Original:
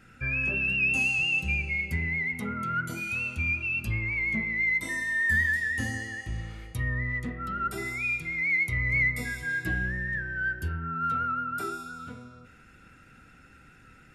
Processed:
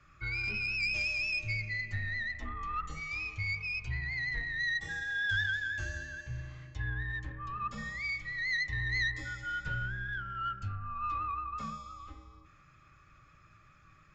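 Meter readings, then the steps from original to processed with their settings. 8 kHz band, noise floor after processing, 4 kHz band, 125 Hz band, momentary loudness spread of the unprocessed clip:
−9.0 dB, −61 dBFS, +0.5 dB, −6.0 dB, 11 LU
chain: phase distortion by the signal itself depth 0.066 ms
frequency shifter −180 Hz
downsampling to 16,000 Hz
level −6 dB

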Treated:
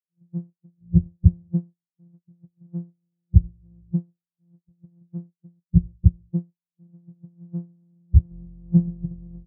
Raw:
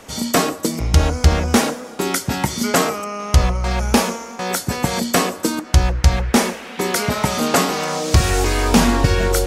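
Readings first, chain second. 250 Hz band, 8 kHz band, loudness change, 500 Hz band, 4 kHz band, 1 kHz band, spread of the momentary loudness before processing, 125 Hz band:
−7.5 dB, below −40 dB, −5.5 dB, below −25 dB, below −40 dB, below −40 dB, 7 LU, −3.0 dB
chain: samples sorted by size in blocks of 256 samples
every bin expanded away from the loudest bin 4 to 1

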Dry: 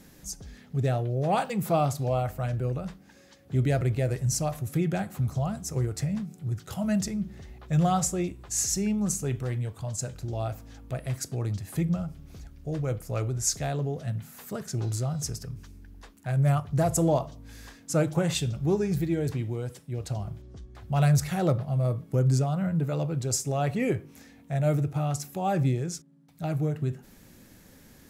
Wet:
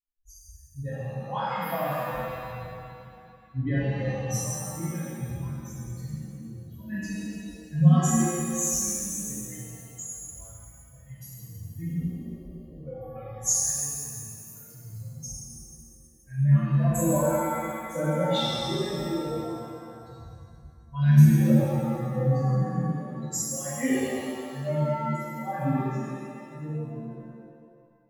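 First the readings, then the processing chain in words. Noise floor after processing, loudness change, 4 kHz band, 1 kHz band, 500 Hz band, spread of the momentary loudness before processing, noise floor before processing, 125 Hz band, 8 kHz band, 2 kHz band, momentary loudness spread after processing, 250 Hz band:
−52 dBFS, +1.5 dB, +1.5 dB, −0.5 dB, −1.5 dB, 13 LU, −54 dBFS, +0.5 dB, +3.0 dB, +1.5 dB, 20 LU, +1.5 dB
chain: spectral dynamics exaggerated over time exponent 3
EQ curve with evenly spaced ripples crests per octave 1.1, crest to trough 12 dB
reverb with rising layers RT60 2.1 s, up +7 semitones, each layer −8 dB, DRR −11.5 dB
level −6 dB

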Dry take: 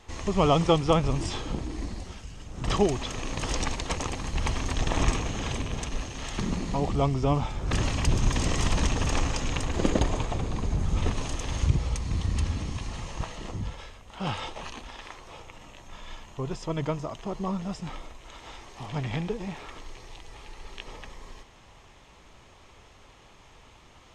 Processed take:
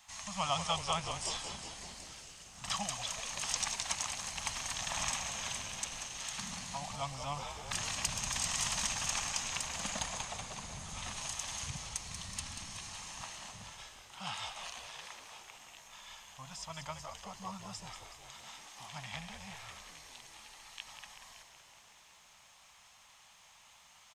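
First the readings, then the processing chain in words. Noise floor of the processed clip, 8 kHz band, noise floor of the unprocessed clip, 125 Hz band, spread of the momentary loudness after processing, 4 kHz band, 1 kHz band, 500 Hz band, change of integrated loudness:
−61 dBFS, +2.5 dB, −54 dBFS, −19.5 dB, 17 LU, −2.0 dB, −8.0 dB, −17.5 dB, −8.5 dB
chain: Chebyshev band-stop filter 200–740 Hz, order 2
RIAA equalisation recording
echo with shifted repeats 187 ms, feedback 63%, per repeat −82 Hz, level −8.5 dB
level −8 dB

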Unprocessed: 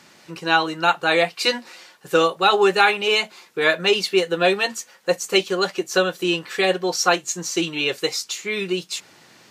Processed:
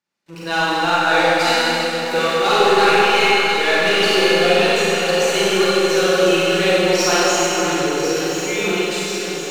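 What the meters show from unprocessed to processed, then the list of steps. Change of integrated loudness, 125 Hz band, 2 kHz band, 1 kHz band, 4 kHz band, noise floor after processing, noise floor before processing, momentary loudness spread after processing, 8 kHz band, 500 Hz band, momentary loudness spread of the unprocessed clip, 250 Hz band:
+4.5 dB, +6.5 dB, +4.5 dB, +5.0 dB, +4.0 dB, −28 dBFS, −51 dBFS, 7 LU, +5.0 dB, +5.0 dB, 9 LU, +5.0 dB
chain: healed spectral selection 0:07.44–0:08.35, 1,000–12,000 Hz
noise gate with hold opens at −37 dBFS
leveller curve on the samples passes 2
on a send: delay that swaps between a low-pass and a high-pass 524 ms, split 1,700 Hz, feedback 76%, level −6 dB
on the sum: four-comb reverb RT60 3.1 s, combs from 32 ms, DRR −8.5 dB
level −11 dB

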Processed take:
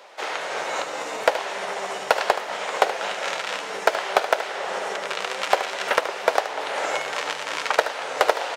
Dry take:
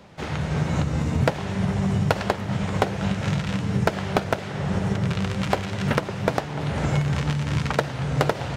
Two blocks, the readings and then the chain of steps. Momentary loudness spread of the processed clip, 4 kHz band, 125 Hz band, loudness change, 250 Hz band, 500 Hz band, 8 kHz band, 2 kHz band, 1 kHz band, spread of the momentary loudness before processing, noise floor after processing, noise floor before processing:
6 LU, +5.5 dB, below −30 dB, 0.0 dB, −18.0 dB, +3.0 dB, +5.5 dB, +5.5 dB, +5.5 dB, 4 LU, −33 dBFS, −33 dBFS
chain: high-pass filter 490 Hz 24 dB per octave
soft clipping −5 dBFS, distortion −23 dB
single-tap delay 75 ms −11 dB
level +5.5 dB

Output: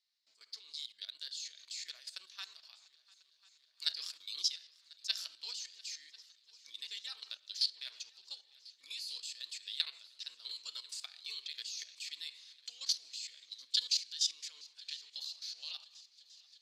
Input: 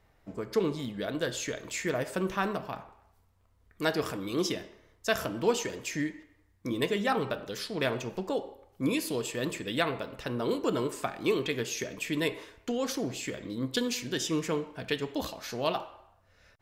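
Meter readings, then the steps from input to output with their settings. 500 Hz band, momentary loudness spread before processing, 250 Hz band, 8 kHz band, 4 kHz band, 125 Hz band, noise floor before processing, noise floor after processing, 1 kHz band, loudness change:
below −40 dB, 8 LU, below −40 dB, −4.0 dB, +1.5 dB, below −40 dB, −66 dBFS, −71 dBFS, −30.0 dB, −7.5 dB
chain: four-pole ladder band-pass 4,700 Hz, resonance 70%
output level in coarse steps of 14 dB
echo machine with several playback heads 348 ms, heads second and third, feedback 66%, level −23 dB
level +13 dB

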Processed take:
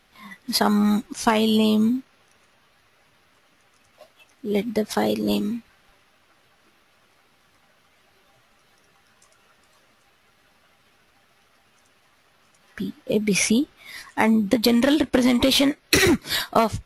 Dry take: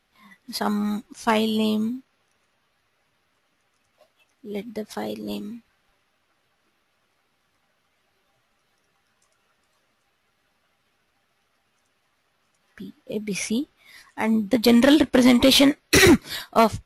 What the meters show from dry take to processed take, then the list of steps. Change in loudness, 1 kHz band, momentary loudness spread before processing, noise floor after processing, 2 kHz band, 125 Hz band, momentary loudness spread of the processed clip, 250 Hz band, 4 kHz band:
−0.5 dB, +1.0 dB, 19 LU, −61 dBFS, −0.5 dB, +2.0 dB, 15 LU, 0.0 dB, 0.0 dB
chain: downward compressor 16 to 1, threshold −24 dBFS, peak gain reduction 13.5 dB
level +9 dB

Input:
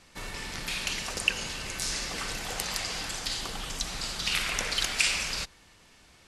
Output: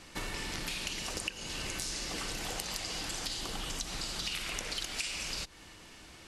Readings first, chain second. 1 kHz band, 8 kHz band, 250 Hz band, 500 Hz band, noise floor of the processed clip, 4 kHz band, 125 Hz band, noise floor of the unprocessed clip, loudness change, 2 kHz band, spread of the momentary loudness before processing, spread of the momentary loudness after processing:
−5.0 dB, −5.0 dB, −1.5 dB, −3.0 dB, −53 dBFS, −5.5 dB, −3.0 dB, −58 dBFS, −6.0 dB, −8.0 dB, 10 LU, 5 LU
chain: hollow resonant body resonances 320/2,900 Hz, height 6 dB
dynamic equaliser 1,600 Hz, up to −4 dB, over −40 dBFS, Q 0.87
downward compressor 6 to 1, threshold −39 dBFS, peak gain reduction 18.5 dB
level +4.5 dB

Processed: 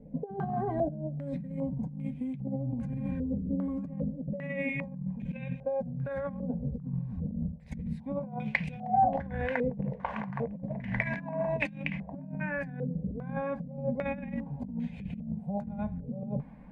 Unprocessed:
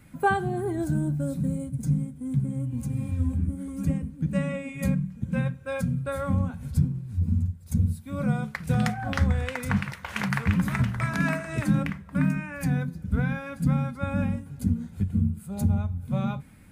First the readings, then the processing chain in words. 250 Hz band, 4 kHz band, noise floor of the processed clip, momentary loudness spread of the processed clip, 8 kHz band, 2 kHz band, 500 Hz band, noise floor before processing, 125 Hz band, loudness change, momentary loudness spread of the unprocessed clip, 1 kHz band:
−6.0 dB, −11.5 dB, −46 dBFS, 6 LU, below −25 dB, −4.5 dB, 0.0 dB, −47 dBFS, −10.5 dB, −6.5 dB, 5 LU, 0.0 dB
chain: phaser with its sweep stopped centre 350 Hz, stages 6
compressor whose output falls as the input rises −36 dBFS, ratio −1
low-pass on a step sequencer 2.5 Hz 460–2,500 Hz

